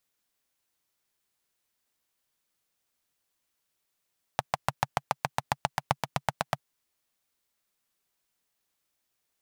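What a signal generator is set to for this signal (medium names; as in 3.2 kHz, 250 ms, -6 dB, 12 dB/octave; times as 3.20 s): single-cylinder engine model, changing speed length 2.21 s, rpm 800, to 1000, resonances 140/780 Hz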